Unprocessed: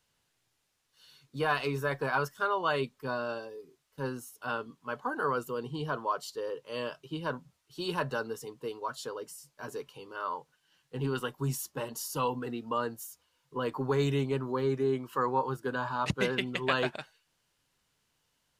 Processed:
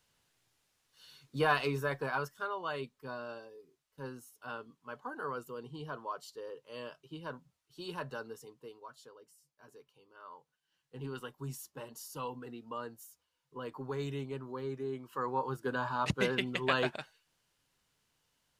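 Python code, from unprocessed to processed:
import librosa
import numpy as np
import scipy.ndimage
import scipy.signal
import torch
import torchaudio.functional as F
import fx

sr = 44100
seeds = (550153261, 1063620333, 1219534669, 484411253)

y = fx.gain(x, sr, db=fx.line((1.43, 1.0), (2.56, -8.5), (8.38, -8.5), (9.16, -17.5), (10.11, -17.5), (10.98, -9.5), (14.91, -9.5), (15.69, -1.5)))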